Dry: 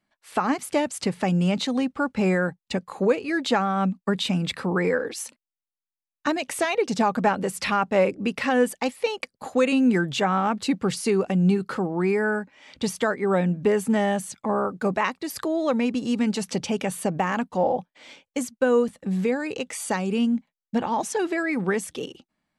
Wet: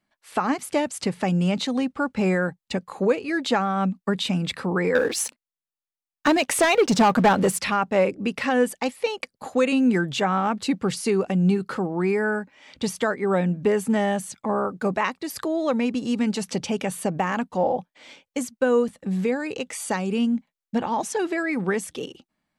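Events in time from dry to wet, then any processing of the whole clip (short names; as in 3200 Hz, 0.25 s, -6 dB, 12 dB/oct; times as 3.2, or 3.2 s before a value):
4.95–7.61 sample leveller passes 2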